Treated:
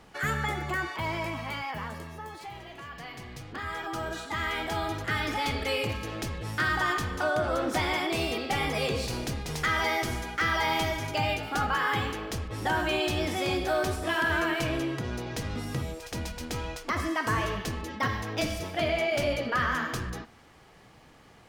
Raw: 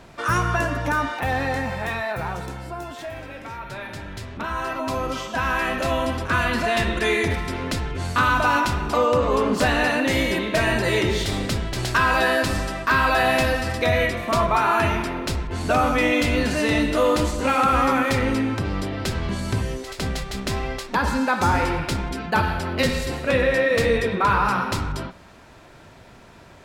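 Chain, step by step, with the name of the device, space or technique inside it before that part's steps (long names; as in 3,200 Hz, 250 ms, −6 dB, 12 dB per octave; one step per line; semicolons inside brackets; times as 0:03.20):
nightcore (speed change +24%)
level −8 dB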